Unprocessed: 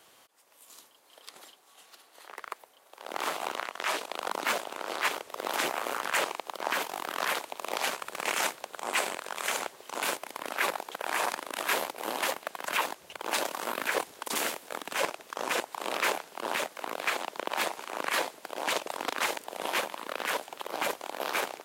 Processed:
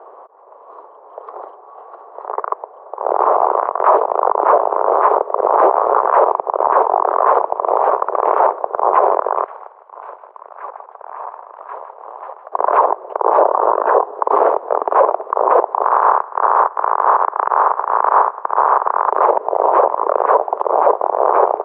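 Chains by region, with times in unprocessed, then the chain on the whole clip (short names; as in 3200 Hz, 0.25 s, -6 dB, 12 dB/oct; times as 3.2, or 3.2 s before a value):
9.44–12.52 band-pass 6400 Hz, Q 1.4 + air absorption 340 m + feedback echo 0.157 s, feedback 39%, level -10.5 dB
13.45–14.17 LPF 4700 Hz + notch 2200 Hz, Q 5.1
15.83–19.1 spectral limiter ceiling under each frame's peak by 18 dB + BPF 510–2600 Hz + band shelf 1200 Hz +8 dB 1.2 oct
whole clip: Chebyshev band-pass 400–1100 Hz, order 3; maximiser +27 dB; gain -1 dB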